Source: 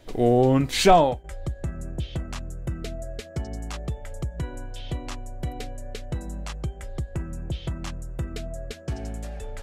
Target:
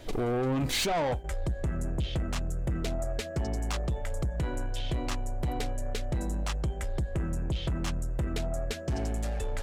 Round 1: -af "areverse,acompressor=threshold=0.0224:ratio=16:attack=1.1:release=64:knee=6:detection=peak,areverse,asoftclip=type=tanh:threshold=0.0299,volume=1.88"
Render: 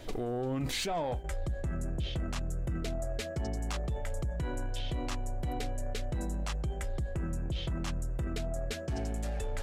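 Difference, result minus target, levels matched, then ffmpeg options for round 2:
compression: peak gain reduction +9.5 dB
-af "areverse,acompressor=threshold=0.0708:ratio=16:attack=1.1:release=64:knee=6:detection=peak,areverse,asoftclip=type=tanh:threshold=0.0299,volume=1.88"

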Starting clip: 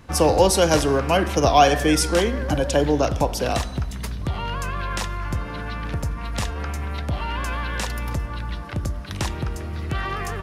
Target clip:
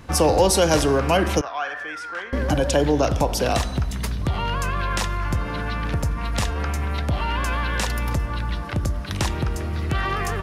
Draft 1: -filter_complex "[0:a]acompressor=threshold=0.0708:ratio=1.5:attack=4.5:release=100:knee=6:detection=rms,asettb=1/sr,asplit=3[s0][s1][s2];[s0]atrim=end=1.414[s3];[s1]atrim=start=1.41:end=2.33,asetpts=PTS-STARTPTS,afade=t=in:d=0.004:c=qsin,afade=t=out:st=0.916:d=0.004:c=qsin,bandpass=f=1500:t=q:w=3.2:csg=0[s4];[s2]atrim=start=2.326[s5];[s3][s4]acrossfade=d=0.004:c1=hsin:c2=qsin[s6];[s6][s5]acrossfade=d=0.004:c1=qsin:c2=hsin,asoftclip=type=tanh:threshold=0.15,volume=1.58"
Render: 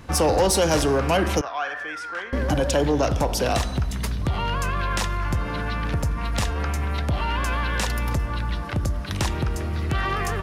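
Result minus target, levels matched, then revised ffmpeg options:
saturation: distortion +18 dB
-filter_complex "[0:a]acompressor=threshold=0.0708:ratio=1.5:attack=4.5:release=100:knee=6:detection=rms,asettb=1/sr,asplit=3[s0][s1][s2];[s0]atrim=end=1.414[s3];[s1]atrim=start=1.41:end=2.33,asetpts=PTS-STARTPTS,afade=t=in:d=0.004:c=qsin,afade=t=out:st=0.916:d=0.004:c=qsin,bandpass=f=1500:t=q:w=3.2:csg=0[s4];[s2]atrim=start=2.326[s5];[s3][s4]acrossfade=d=0.004:c1=hsin:c2=qsin[s6];[s6][s5]acrossfade=d=0.004:c1=qsin:c2=hsin,asoftclip=type=tanh:threshold=0.562,volume=1.58"

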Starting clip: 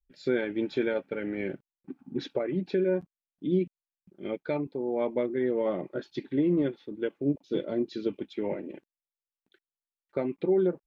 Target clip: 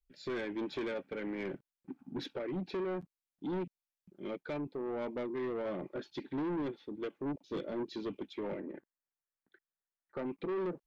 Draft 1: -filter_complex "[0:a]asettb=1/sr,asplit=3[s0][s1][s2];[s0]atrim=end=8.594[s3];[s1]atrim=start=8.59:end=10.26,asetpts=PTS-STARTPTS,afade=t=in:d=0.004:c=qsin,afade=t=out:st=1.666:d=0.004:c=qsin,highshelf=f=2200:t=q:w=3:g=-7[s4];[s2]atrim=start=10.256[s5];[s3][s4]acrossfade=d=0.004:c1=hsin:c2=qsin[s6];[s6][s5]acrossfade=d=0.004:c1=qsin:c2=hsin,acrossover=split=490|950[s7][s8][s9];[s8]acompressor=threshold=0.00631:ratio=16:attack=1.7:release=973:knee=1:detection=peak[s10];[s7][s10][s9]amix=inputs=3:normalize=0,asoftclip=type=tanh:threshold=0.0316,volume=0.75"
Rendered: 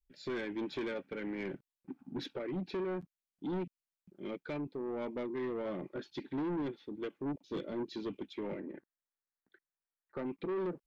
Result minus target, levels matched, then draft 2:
compression: peak gain reduction +9.5 dB
-filter_complex "[0:a]asettb=1/sr,asplit=3[s0][s1][s2];[s0]atrim=end=8.594[s3];[s1]atrim=start=8.59:end=10.26,asetpts=PTS-STARTPTS,afade=t=in:d=0.004:c=qsin,afade=t=out:st=1.666:d=0.004:c=qsin,highshelf=f=2200:t=q:w=3:g=-7[s4];[s2]atrim=start=10.256[s5];[s3][s4]acrossfade=d=0.004:c1=hsin:c2=qsin[s6];[s6][s5]acrossfade=d=0.004:c1=qsin:c2=hsin,acrossover=split=490|950[s7][s8][s9];[s8]acompressor=threshold=0.02:ratio=16:attack=1.7:release=973:knee=1:detection=peak[s10];[s7][s10][s9]amix=inputs=3:normalize=0,asoftclip=type=tanh:threshold=0.0316,volume=0.75"

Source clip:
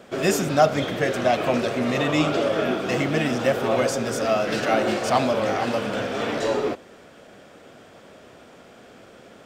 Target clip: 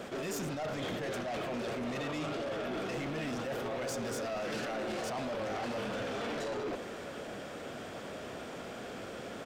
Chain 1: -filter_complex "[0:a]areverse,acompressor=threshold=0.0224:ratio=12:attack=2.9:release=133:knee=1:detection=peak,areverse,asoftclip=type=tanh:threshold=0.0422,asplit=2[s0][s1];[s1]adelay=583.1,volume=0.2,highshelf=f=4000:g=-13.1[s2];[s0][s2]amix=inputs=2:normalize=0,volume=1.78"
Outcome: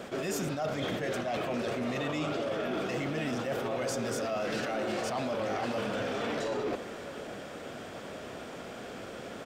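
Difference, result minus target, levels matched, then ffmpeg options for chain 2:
saturation: distortion -14 dB
-filter_complex "[0:a]areverse,acompressor=threshold=0.0224:ratio=12:attack=2.9:release=133:knee=1:detection=peak,areverse,asoftclip=type=tanh:threshold=0.0126,asplit=2[s0][s1];[s1]adelay=583.1,volume=0.2,highshelf=f=4000:g=-13.1[s2];[s0][s2]amix=inputs=2:normalize=0,volume=1.78"

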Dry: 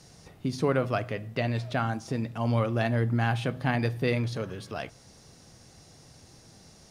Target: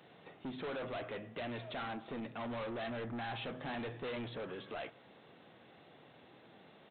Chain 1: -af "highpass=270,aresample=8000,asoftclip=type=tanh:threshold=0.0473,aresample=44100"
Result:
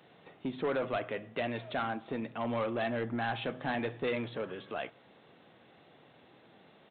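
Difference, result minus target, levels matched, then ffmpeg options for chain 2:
saturation: distortion -7 dB
-af "highpass=270,aresample=8000,asoftclip=type=tanh:threshold=0.0119,aresample=44100"

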